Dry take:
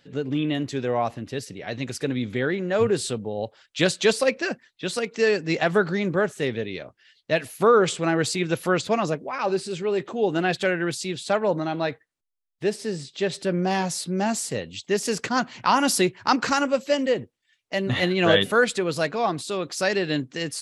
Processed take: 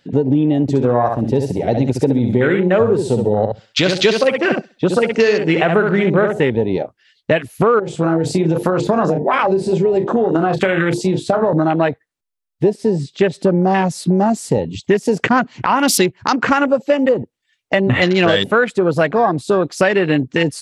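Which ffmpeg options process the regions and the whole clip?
-filter_complex "[0:a]asettb=1/sr,asplit=3[s0][s1][s2];[s0]atrim=end=0.624[s3];[s1]atrim=start=0.62:end=6.4,asetpts=PTS-STARTPTS,afade=t=in:d=0.004:c=qsin,afade=t=out:st=5.776:d=0.004:c=qsin,bandreject=f=1700:w=16,aecho=1:1:66|132|198|264:0.501|0.14|0.0393|0.011,atrim=end_sample=254898[s4];[s2]atrim=start=6.396[s5];[s3][s4]acrossfade=d=0.004:c1=hsin:c2=qsin[s6];[s6][s5]acrossfade=d=0.004:c1=qsin:c2=hsin,asettb=1/sr,asplit=3[s7][s8][s9];[s7]atrim=end=7.794[s10];[s8]atrim=start=7.79:end=11.53,asetpts=PTS-STARTPTS,afade=t=in:d=0.004:c=qsin,afade=t=out:st=3.736:d=0.004:c=qsin,bandreject=f=50:t=h:w=6,bandreject=f=100:t=h:w=6,bandreject=f=150:t=h:w=6,bandreject=f=200:t=h:w=6,bandreject=f=250:t=h:w=6,bandreject=f=300:t=h:w=6,bandreject=f=350:t=h:w=6,bandreject=f=400:t=h:w=6,bandreject=f=450:t=h:w=6,bandreject=f=500:t=h:w=6,asplit=2[s11][s12];[s12]adelay=31,volume=0.376[s13];[s11][s13]amix=inputs=2:normalize=0,atrim=end_sample=164934,acompressor=threshold=0.0631:ratio=16:attack=3.2:release=140:knee=1:detection=peak[s14];[s9]atrim=start=11.526[s15];[s10][s14]acrossfade=d=0.004:c1=hsin:c2=qsin[s16];[s16][s15]acrossfade=d=0.004:c1=qsin:c2=hsin,afwtdn=0.0282,acompressor=threshold=0.0316:ratio=6,alimiter=level_in=9.44:limit=0.891:release=50:level=0:latency=1,volume=0.891"

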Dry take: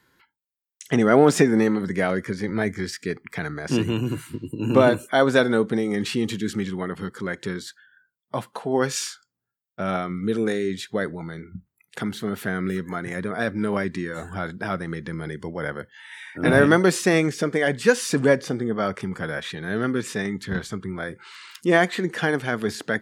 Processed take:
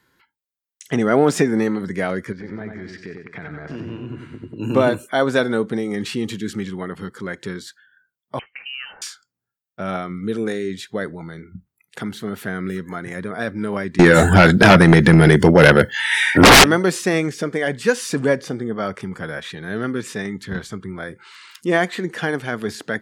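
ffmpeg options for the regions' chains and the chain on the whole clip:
-filter_complex "[0:a]asettb=1/sr,asplit=3[s0][s1][s2];[s0]atrim=end=2.324[s3];[s1]atrim=start=2.32:end=4.58,asetpts=PTS-STARTPTS,afade=t=in:d=0.004:c=qsin,afade=t=out:st=2.256:d=0.004:c=qsin,lowpass=2500,acompressor=threshold=0.0282:ratio=3:attack=3.2:release=140:knee=1:detection=peak,aecho=1:1:93|186|279|372|465:0.562|0.225|0.09|0.036|0.0144,atrim=end_sample=99666[s4];[s2]atrim=start=4.576[s5];[s3][s4]acrossfade=d=0.004:c1=hsin:c2=qsin[s6];[s6][s5]acrossfade=d=0.004:c1=qsin:c2=hsin,asettb=1/sr,asplit=3[s7][s8][s9];[s7]atrim=end=8.394[s10];[s8]atrim=start=8.39:end=9.02,asetpts=PTS-STARTPTS,afade=t=in:d=0.004:c=qsin,afade=t=out:st=0.626:d=0.004:c=qsin,lowshelf=f=380:g=-8.5,acompressor=threshold=0.0398:ratio=5:attack=3.2:release=140:knee=1:detection=peak,lowpass=f=2700:t=q:w=0.5098,lowpass=f=2700:t=q:w=0.6013,lowpass=f=2700:t=q:w=0.9,lowpass=f=2700:t=q:w=2.563,afreqshift=-3200[s11];[s9]atrim=start=9.016[s12];[s10][s11]acrossfade=d=0.004:c1=hsin:c2=qsin[s13];[s13][s12]acrossfade=d=0.004:c1=qsin:c2=hsin,asettb=1/sr,asplit=3[s14][s15][s16];[s14]atrim=end=13.994[s17];[s15]atrim=start=13.99:end=16.64,asetpts=PTS-STARTPTS,afade=t=in:d=0.004:c=qsin,afade=t=out:st=2.646:d=0.004:c=qsin,equalizer=f=1100:w=7.5:g=-14.5,aeval=exprs='0.668*sin(PI/2*8.91*val(0)/0.668)':c=same[s18];[s16]atrim=start=16.636[s19];[s17][s18]acrossfade=d=0.004:c1=hsin:c2=qsin[s20];[s20][s19]acrossfade=d=0.004:c1=qsin:c2=hsin"

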